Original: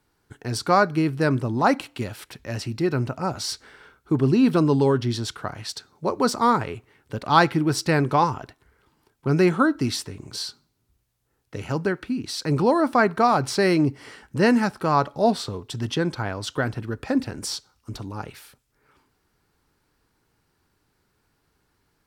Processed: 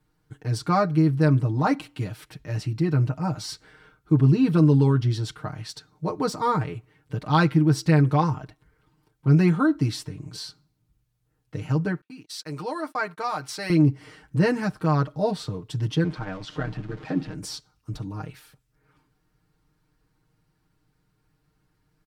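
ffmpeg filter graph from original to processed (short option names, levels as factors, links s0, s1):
-filter_complex "[0:a]asettb=1/sr,asplit=3[s0][s1][s2];[s0]atrim=end=12.014[s3];[s1]atrim=start=12.01:end=13.7,asetpts=PTS-STARTPTS,afade=t=in:d=0.004:c=qsin,afade=t=out:st=1.686:d=0.004:c=qsin,agate=range=0.0158:threshold=0.02:ratio=16:release=100:detection=peak,highpass=f=1200:p=1,highshelf=f=10000:g=4.5[s4];[s2]atrim=start=13.696[s5];[s3][s4]acrossfade=d=0.004:c1=hsin:c2=qsin[s6];[s6][s5]acrossfade=d=0.004:c1=qsin:c2=hsin,asettb=1/sr,asplit=3[s7][s8][s9];[s7]atrim=end=16.044[s10];[s8]atrim=start=16.04:end=17.34,asetpts=PTS-STARTPTS,afade=t=in:d=0.004:c=qsin,afade=t=out:st=1.296:d=0.004:c=qsin,aeval=exprs='val(0)+0.5*0.0266*sgn(val(0))':c=same,highpass=150,lowpass=4300,tremolo=f=90:d=0.788[s11];[s9]atrim=start=17.336[s12];[s10][s11]acrossfade=d=0.004:c1=hsin:c2=qsin[s13];[s13][s12]acrossfade=d=0.004:c1=qsin:c2=hsin,bass=f=250:g=9,treble=f=4000:g=-2,aecho=1:1:6.5:0.87,volume=0.447"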